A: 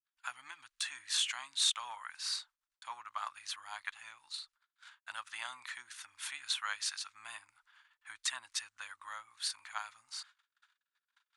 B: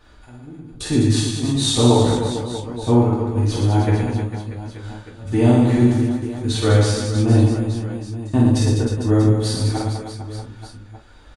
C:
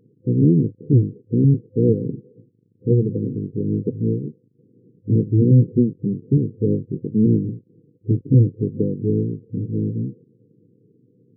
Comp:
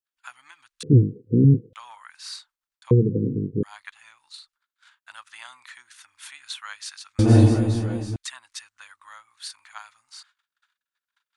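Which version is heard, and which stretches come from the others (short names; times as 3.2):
A
0.83–1.73 from C
2.91–3.63 from C
7.19–8.16 from B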